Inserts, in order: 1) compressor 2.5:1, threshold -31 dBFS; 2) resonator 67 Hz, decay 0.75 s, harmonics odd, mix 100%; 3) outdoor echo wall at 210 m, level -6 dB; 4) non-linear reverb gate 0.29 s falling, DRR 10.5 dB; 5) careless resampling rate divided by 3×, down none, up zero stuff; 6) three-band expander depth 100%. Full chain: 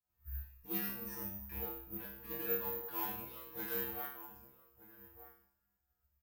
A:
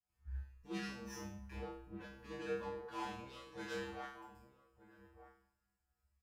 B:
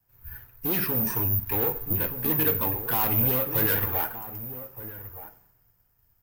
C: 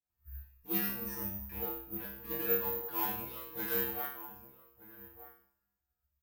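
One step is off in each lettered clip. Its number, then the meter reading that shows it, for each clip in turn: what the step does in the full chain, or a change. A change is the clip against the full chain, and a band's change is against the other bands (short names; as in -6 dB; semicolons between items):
5, loudness change -7.0 LU; 2, 125 Hz band +7.0 dB; 1, loudness change +5.0 LU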